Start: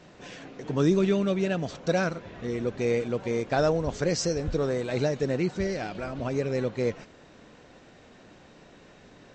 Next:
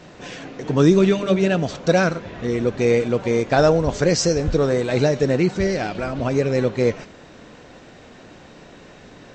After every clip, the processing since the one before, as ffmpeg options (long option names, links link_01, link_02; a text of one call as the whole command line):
ffmpeg -i in.wav -af "bandreject=frequency=198.6:width_type=h:width=4,bandreject=frequency=397.2:width_type=h:width=4,bandreject=frequency=595.8:width_type=h:width=4,bandreject=frequency=794.4:width_type=h:width=4,bandreject=frequency=993:width_type=h:width=4,bandreject=frequency=1191.6:width_type=h:width=4,bandreject=frequency=1390.2:width_type=h:width=4,bandreject=frequency=1588.8:width_type=h:width=4,bandreject=frequency=1787.4:width_type=h:width=4,bandreject=frequency=1986:width_type=h:width=4,bandreject=frequency=2184.6:width_type=h:width=4,bandreject=frequency=2383.2:width_type=h:width=4,bandreject=frequency=2581.8:width_type=h:width=4,bandreject=frequency=2780.4:width_type=h:width=4,bandreject=frequency=2979:width_type=h:width=4,bandreject=frequency=3177.6:width_type=h:width=4,bandreject=frequency=3376.2:width_type=h:width=4,bandreject=frequency=3574.8:width_type=h:width=4,bandreject=frequency=3773.4:width_type=h:width=4,bandreject=frequency=3972:width_type=h:width=4,bandreject=frequency=4170.6:width_type=h:width=4,bandreject=frequency=4369.2:width_type=h:width=4,bandreject=frequency=4567.8:width_type=h:width=4,bandreject=frequency=4766.4:width_type=h:width=4,bandreject=frequency=4965:width_type=h:width=4,bandreject=frequency=5163.6:width_type=h:width=4,bandreject=frequency=5362.2:width_type=h:width=4,bandreject=frequency=5560.8:width_type=h:width=4,bandreject=frequency=5759.4:width_type=h:width=4,bandreject=frequency=5958:width_type=h:width=4,bandreject=frequency=6156.6:width_type=h:width=4,bandreject=frequency=6355.2:width_type=h:width=4,bandreject=frequency=6553.8:width_type=h:width=4,bandreject=frequency=6752.4:width_type=h:width=4,bandreject=frequency=6951:width_type=h:width=4,bandreject=frequency=7149.6:width_type=h:width=4,bandreject=frequency=7348.2:width_type=h:width=4,bandreject=frequency=7546.8:width_type=h:width=4,bandreject=frequency=7745.4:width_type=h:width=4,volume=8.5dB" out.wav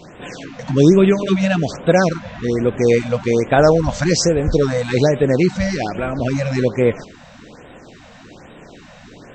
ffmpeg -i in.wav -af "afftfilt=real='re*(1-between(b*sr/1024,320*pow(5600/320,0.5+0.5*sin(2*PI*1.2*pts/sr))/1.41,320*pow(5600/320,0.5+0.5*sin(2*PI*1.2*pts/sr))*1.41))':imag='im*(1-between(b*sr/1024,320*pow(5600/320,0.5+0.5*sin(2*PI*1.2*pts/sr))/1.41,320*pow(5600/320,0.5+0.5*sin(2*PI*1.2*pts/sr))*1.41))':win_size=1024:overlap=0.75,volume=3.5dB" out.wav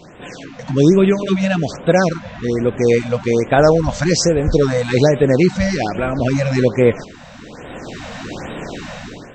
ffmpeg -i in.wav -af "dynaudnorm=framelen=470:gausssize=3:maxgain=13.5dB,volume=-1dB" out.wav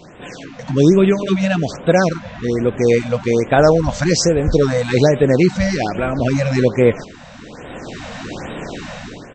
ffmpeg -i in.wav -af "aresample=22050,aresample=44100" out.wav